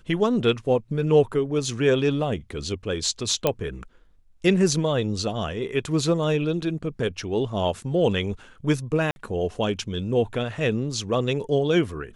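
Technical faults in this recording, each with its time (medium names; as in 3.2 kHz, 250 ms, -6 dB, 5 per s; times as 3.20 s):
3.47 s: pop -7 dBFS
9.11–9.16 s: dropout 51 ms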